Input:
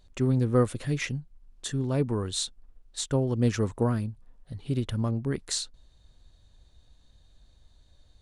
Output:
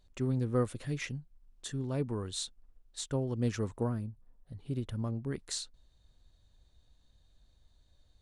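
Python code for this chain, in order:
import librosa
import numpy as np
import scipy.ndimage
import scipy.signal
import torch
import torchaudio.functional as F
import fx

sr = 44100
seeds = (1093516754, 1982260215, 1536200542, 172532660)

y = fx.peak_eq(x, sr, hz=4000.0, db=fx.line((3.87, -9.0), (5.28, -2.0)), octaves=2.9, at=(3.87, 5.28), fade=0.02)
y = y * librosa.db_to_amplitude(-7.0)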